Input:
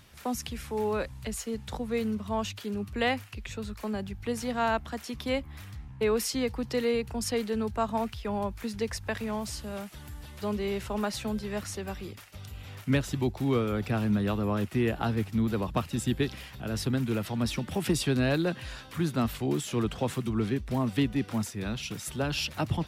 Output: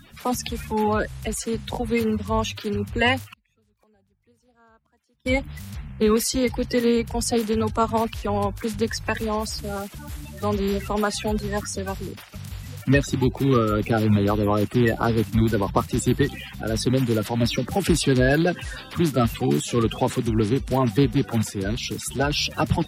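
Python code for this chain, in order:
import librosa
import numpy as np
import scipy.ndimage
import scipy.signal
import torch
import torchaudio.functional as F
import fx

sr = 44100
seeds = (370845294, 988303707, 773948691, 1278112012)

y = fx.spec_quant(x, sr, step_db=30)
y = fx.gate_flip(y, sr, shuts_db=-35.0, range_db=-37, at=(3.32, 5.25), fade=0.02)
y = y * 10.0 ** (8.0 / 20.0)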